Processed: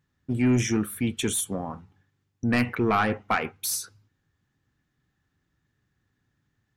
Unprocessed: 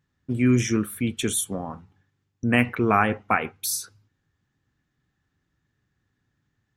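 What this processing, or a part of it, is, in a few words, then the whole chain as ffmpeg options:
saturation between pre-emphasis and de-emphasis: -af "highshelf=f=8.9k:g=10,asoftclip=type=tanh:threshold=-14.5dB,highshelf=f=8.9k:g=-10"

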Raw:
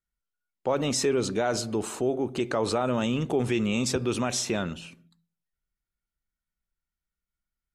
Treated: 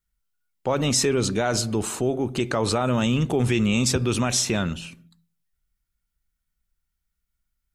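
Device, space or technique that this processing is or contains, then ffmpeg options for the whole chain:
smiley-face EQ: -af "lowshelf=f=200:g=6,equalizer=f=430:t=o:w=2.5:g=-5,highshelf=f=9.6k:g=4.5,volume=5.5dB"

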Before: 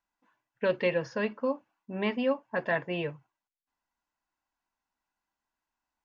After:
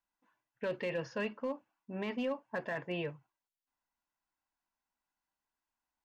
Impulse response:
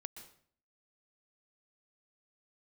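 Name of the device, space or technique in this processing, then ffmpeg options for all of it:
limiter into clipper: -filter_complex "[0:a]alimiter=limit=-22.5dB:level=0:latency=1:release=18,asoftclip=type=hard:threshold=-24dB,asettb=1/sr,asplit=3[a][b][c];[a]atrim=end=0.954[d];[b]atrim=start=0.95:end=1.45,asetpts=PTS-STARTPTS,afade=t=in:d=0.004:c=qsin,afade=t=out:st=0.496:d=0.004:c=qsin,equalizer=f=2.8k:w=6:g=5.5[e];[c]atrim=start=1.446[f];[d][e]acrossfade=d=0.004:c1=hsin:c2=qsin[g];[g][f]acrossfade=d=0.004:c1=qsin:c2=hsin,volume=-4.5dB"

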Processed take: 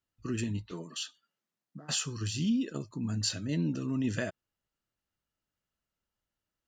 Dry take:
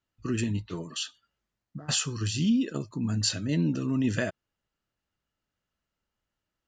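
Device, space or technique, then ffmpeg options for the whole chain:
exciter from parts: -filter_complex "[0:a]asplit=2[a][b];[b]highpass=3.2k,asoftclip=type=tanh:threshold=-37.5dB,volume=-11.5dB[c];[a][c]amix=inputs=2:normalize=0,asettb=1/sr,asplit=3[d][e][f];[d]atrim=end=0.714[g];[e]atrim=start=0.71:end=1.99,asetpts=PTS-STARTPTS,afade=t=in:d=0.004:c=qsin,afade=t=out:st=1.276:d=0.004:c=qsin,highpass=f=150:w=0.5412,highpass=f=150:w=1.3066[h];[f]atrim=start=1.986[i];[g][h]acrossfade=d=0.004:c1=hsin:c2=qsin[j];[j][i]acrossfade=d=0.004:c1=qsin:c2=hsin,volume=-4.5dB"

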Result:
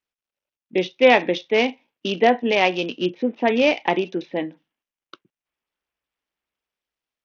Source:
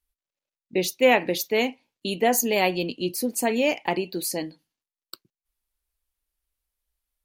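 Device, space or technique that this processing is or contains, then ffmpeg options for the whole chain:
Bluetooth headset: -filter_complex "[0:a]asettb=1/sr,asplit=3[a][b][c];[a]atrim=end=2.514[d];[b]atrim=start=2.51:end=2.93,asetpts=PTS-STARTPTS,afade=t=in:d=0.004:c=qsin,afade=t=out:st=0.416:d=0.004:c=qsin,lowshelf=f=440:g=-5[e];[c]atrim=start=2.926[f];[d][e]acrossfade=d=0.004:c1=hsin:c2=qsin[g];[g][f]acrossfade=d=0.004:c1=qsin:c2=hsin,highpass=180,dynaudnorm=f=160:g=9:m=3.5dB,aresample=8000,aresample=44100,volume=2dB" -ar 48000 -c:a sbc -b:a 64k

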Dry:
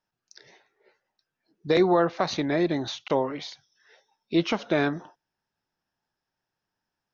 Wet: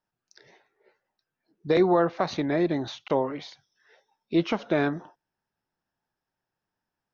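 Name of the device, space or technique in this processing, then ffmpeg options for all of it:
behind a face mask: -af "highshelf=f=3.1k:g=-8"

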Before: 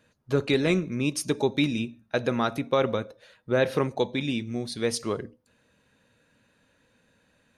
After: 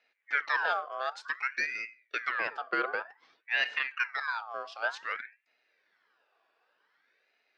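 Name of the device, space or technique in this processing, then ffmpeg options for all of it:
voice changer toy: -filter_complex "[0:a]aeval=exprs='val(0)*sin(2*PI*1600*n/s+1600*0.45/0.54*sin(2*PI*0.54*n/s))':c=same,highpass=400,equalizer=f=460:t=q:w=4:g=5,equalizer=f=1.6k:t=q:w=4:g=6,equalizer=f=3.4k:t=q:w=4:g=-3,lowpass=f=4.8k:w=0.5412,lowpass=f=4.8k:w=1.3066,asettb=1/sr,asplit=3[a][b][c];[a]atrim=end=1.284[d];[b]atrim=start=1.28:end=2.27,asetpts=PTS-STARTPTS,afade=t=in:d=0.004:c=qsin,afade=t=out:st=0.986:d=0.004:c=qsin,equalizer=f=890:t=o:w=0.79:g=-11[e];[c]atrim=start=2.266[f];[d][e]acrossfade=d=0.004:c1=hsin:c2=qsin[g];[g][f]acrossfade=d=0.004:c1=qsin:c2=hsin,volume=-5.5dB"

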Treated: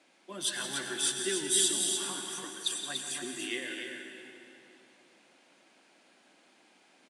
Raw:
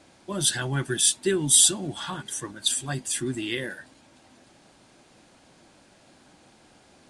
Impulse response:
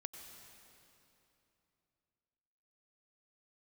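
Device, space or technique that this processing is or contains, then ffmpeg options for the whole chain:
stadium PA: -filter_complex "[0:a]highpass=f=170:w=0.5412,highpass=f=170:w=1.3066,highpass=220,equalizer=f=2.4k:t=o:w=1.1:g=7,aecho=1:1:172|288.6:0.282|0.501[a];[1:a]atrim=start_sample=2205[b];[a][b]afir=irnorm=-1:irlink=0,volume=-6dB"

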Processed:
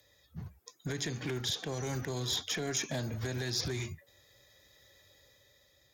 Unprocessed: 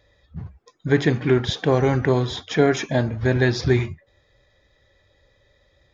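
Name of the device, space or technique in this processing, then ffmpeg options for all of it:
FM broadcast chain: -filter_complex "[0:a]highpass=78,dynaudnorm=f=220:g=7:m=4.5dB,acrossover=split=110|250|4100[a][b][c][d];[a]acompressor=threshold=-31dB:ratio=4[e];[b]acompressor=threshold=-32dB:ratio=4[f];[c]acompressor=threshold=-26dB:ratio=4[g];[d]acompressor=threshold=-38dB:ratio=4[h];[e][f][g][h]amix=inputs=4:normalize=0,aemphasis=mode=production:type=50fm,alimiter=limit=-18.5dB:level=0:latency=1:release=144,asoftclip=type=hard:threshold=-22dB,lowpass=f=15k:w=0.5412,lowpass=f=15k:w=1.3066,aemphasis=mode=production:type=50fm,volume=-7.5dB"

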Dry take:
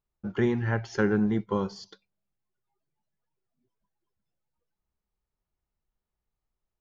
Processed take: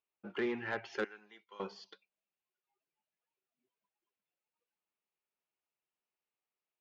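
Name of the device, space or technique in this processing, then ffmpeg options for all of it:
intercom: -filter_complex "[0:a]asettb=1/sr,asplit=3[a][b][c];[a]atrim=end=1.044[d];[b]atrim=start=1.04:end=1.6,asetpts=PTS-STARTPTS,afade=t=in:d=0.004:c=qsin,afade=t=out:st=0.556:d=0.004:c=qsin,aderivative[e];[c]atrim=start=1.596[f];[d][e]acrossfade=d=0.004:c1=hsin:c2=qsin[g];[g][f]acrossfade=d=0.004:c1=qsin:c2=hsin,highpass=350,lowpass=3.8k,equalizer=f=2.6k:t=o:w=0.53:g=9.5,asoftclip=type=tanh:threshold=-21.5dB,volume=-4.5dB"

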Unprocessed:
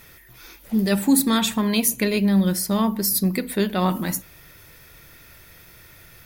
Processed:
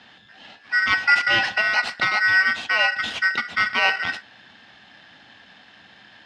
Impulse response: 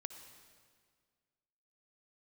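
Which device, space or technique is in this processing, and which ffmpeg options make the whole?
ring modulator pedal into a guitar cabinet: -af "aeval=exprs='val(0)*sgn(sin(2*PI*1700*n/s))':c=same,highpass=90,equalizer=f=150:t=q:w=4:g=-4,equalizer=f=220:t=q:w=4:g=5,equalizer=f=380:t=q:w=4:g=-5,equalizer=f=760:t=q:w=4:g=7,equalizer=f=2.8k:t=q:w=4:g=7,lowpass=f=4.3k:w=0.5412,lowpass=f=4.3k:w=1.3066"

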